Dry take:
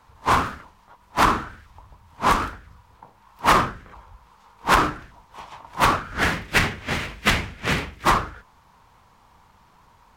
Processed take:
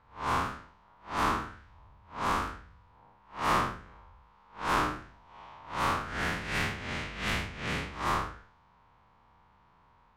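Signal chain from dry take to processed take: time blur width 0.153 s; low-pass opened by the level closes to 3000 Hz, open at -21.5 dBFS; gain -6 dB

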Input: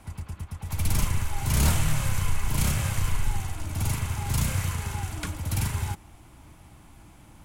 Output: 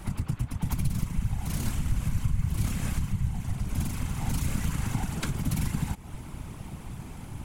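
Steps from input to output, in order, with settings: low shelf 65 Hz +10.5 dB; compressor 6:1, threshold -32 dBFS, peak gain reduction 21 dB; whisperiser; gain +6.5 dB

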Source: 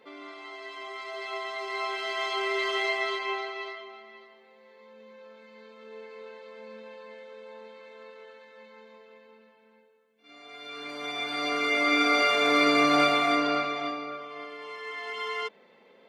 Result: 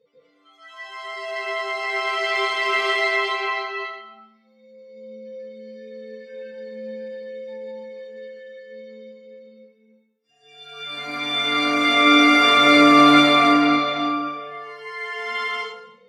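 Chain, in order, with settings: spectral noise reduction 27 dB; plate-style reverb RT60 0.74 s, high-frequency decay 0.9×, pre-delay 0.12 s, DRR -7.5 dB

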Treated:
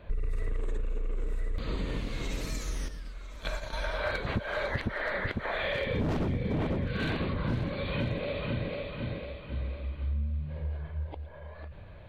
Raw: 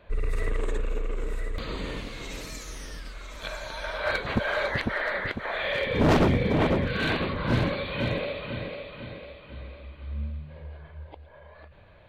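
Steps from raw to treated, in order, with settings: 2.88–3.73 gate -35 dBFS, range -9 dB; low shelf 300 Hz +8.5 dB; compressor 6:1, threshold -28 dBFS, peak gain reduction 15.5 dB

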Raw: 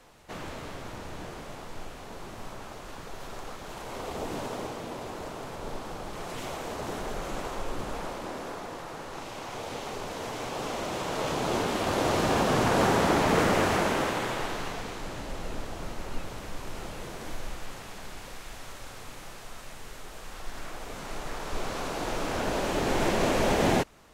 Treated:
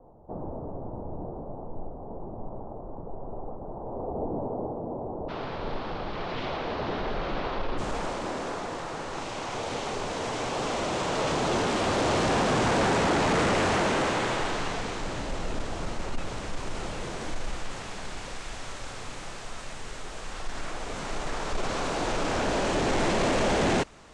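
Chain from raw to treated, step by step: soft clip -25.5 dBFS, distortion -10 dB; steep low-pass 870 Hz 36 dB/oct, from 5.28 s 4600 Hz, from 7.77 s 9100 Hz; gain +5 dB

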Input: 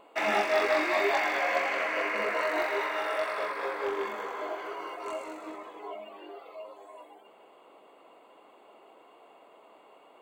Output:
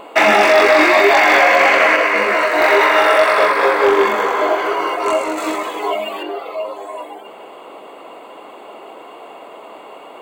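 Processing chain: 5.37–6.23 high shelf 2700 Hz +11.5 dB; maximiser +20.5 dB; 1.96–2.61 detuned doubles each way 26 cents; gain -1 dB

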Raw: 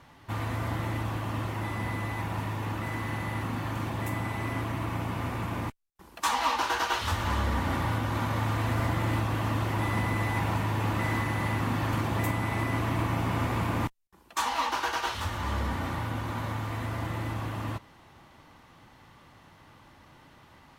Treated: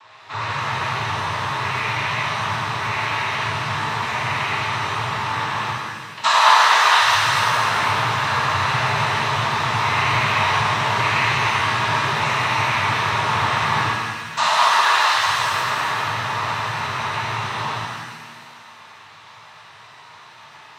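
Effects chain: noise vocoder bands 12; ten-band EQ 250 Hz -11 dB, 1000 Hz +11 dB, 2000 Hz +6 dB, 4000 Hz +12 dB; shimmer reverb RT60 1.6 s, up +7 st, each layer -8 dB, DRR -6 dB; gain -3 dB

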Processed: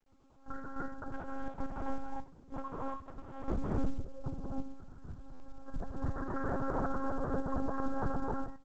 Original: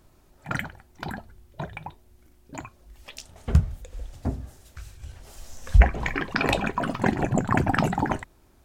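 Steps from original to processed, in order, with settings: minimum comb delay 5.6 ms; gate with hold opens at -49 dBFS; steep low-pass 1400 Hz 48 dB/oct; dynamic EQ 920 Hz, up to -8 dB, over -47 dBFS, Q 5.3; comb 6.3 ms, depth 48%; compressor 16:1, threshold -26 dBFS, peak gain reduction 16 dB; 1.13–3.74 sample leveller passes 2; feedback echo 95 ms, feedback 15%, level -23 dB; non-linear reverb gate 0.34 s rising, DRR -4.5 dB; monotone LPC vocoder at 8 kHz 270 Hz; stuck buffer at 5.33, samples 512, times 5; gain -6.5 dB; µ-law 128 kbps 16000 Hz

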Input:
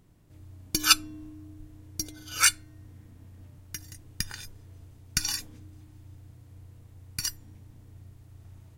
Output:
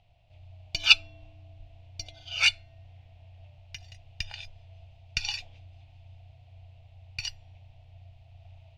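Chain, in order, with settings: EQ curve 100 Hz 0 dB, 230 Hz -20 dB, 380 Hz -21 dB, 690 Hz +12 dB, 1100 Hz -10 dB, 1700 Hz -9 dB, 2600 Hz +11 dB, 4500 Hz 0 dB, 11000 Hz -30 dB; gain -1 dB

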